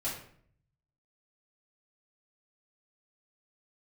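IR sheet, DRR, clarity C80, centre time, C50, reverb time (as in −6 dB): −9.0 dB, 8.5 dB, 36 ms, 5.0 dB, 0.60 s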